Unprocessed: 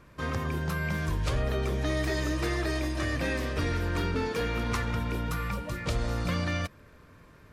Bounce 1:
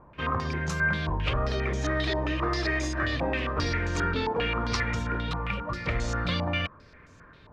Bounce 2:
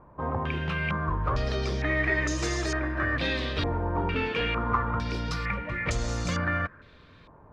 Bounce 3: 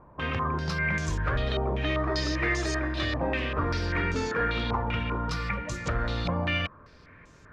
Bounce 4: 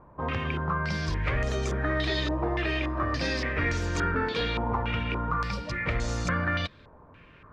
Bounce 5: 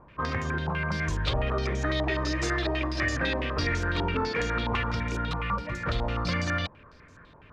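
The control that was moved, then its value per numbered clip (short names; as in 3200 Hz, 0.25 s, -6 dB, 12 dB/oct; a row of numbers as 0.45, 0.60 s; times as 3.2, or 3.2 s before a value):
stepped low-pass, rate: 7.5, 2.2, 5.1, 3.5, 12 Hz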